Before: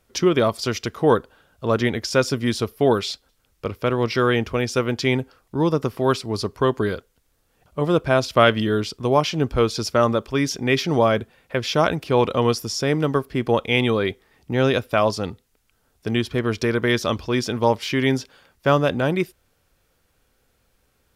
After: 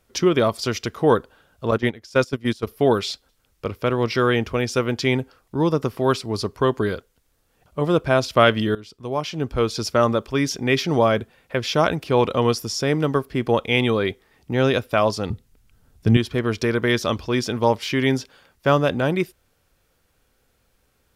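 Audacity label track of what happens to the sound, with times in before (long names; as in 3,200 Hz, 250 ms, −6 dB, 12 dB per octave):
1.710000	2.670000	noise gate −22 dBFS, range −16 dB
8.750000	9.880000	fade in, from −18.5 dB
15.300000	16.170000	bass and treble bass +13 dB, treble 0 dB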